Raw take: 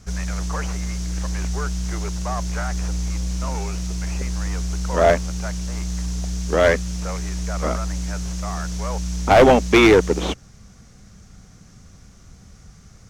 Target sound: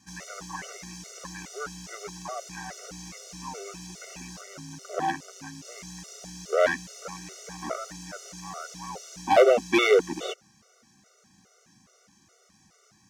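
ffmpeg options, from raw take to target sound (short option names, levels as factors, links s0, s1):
-filter_complex "[0:a]asettb=1/sr,asplit=3[s0][s1][s2];[s0]atrim=end=4.414[s3];[s1]atrim=start=4.41:end=5.65,asetpts=PTS-STARTPTS,afade=t=in:d=0.004:c=qsin,afade=t=out:st=1.236:d=0.004:c=qsin,aeval=exprs='val(0)*sin(2*PI*94*n/s)':c=same[s4];[s2]atrim=start=5.646[s5];[s3][s4]acrossfade=d=0.004:c1=hsin:c2=qsin[s6];[s6][s5]acrossfade=d=0.004:c1=qsin:c2=hsin,highpass=280,afftfilt=real='re*gt(sin(2*PI*2.4*pts/sr)*(1-2*mod(floor(b*sr/1024/380),2)),0)':imag='im*gt(sin(2*PI*2.4*pts/sr)*(1-2*mod(floor(b*sr/1024/380),2)),0)':win_size=1024:overlap=0.75,volume=0.668"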